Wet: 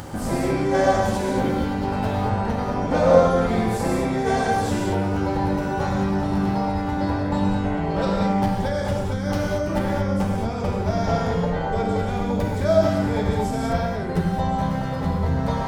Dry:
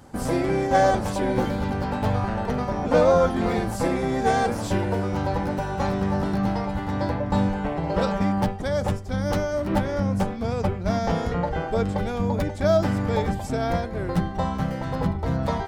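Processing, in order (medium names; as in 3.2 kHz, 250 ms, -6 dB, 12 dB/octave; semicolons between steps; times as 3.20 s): upward compressor, threshold -23 dBFS; gated-style reverb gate 250 ms flat, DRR -2.5 dB; trim -3 dB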